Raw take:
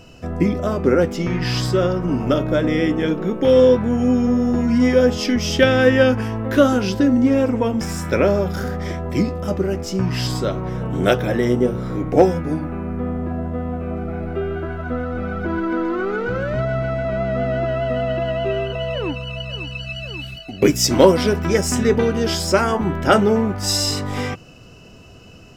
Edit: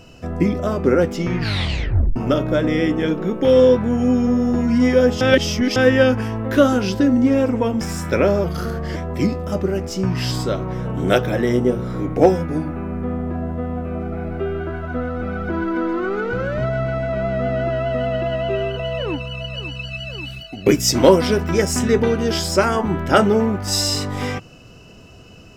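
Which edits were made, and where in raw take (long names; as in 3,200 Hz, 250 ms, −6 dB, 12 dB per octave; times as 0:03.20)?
0:01.38: tape stop 0.78 s
0:05.21–0:05.76: reverse
0:08.44–0:08.92: play speed 92%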